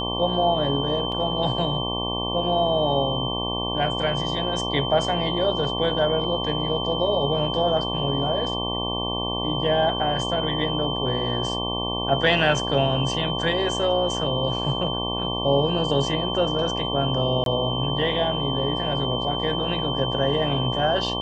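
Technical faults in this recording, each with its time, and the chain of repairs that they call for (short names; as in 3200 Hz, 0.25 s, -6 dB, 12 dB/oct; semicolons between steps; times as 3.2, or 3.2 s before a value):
buzz 60 Hz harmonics 19 -29 dBFS
tone 3100 Hz -28 dBFS
1.12 gap 2.7 ms
17.44–17.46 gap 22 ms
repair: de-hum 60 Hz, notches 19; notch 3100 Hz, Q 30; interpolate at 1.12, 2.7 ms; interpolate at 17.44, 22 ms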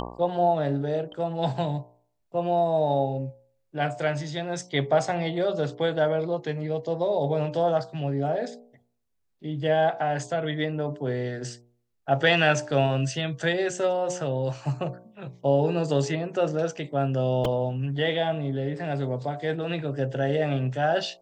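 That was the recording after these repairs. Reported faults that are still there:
none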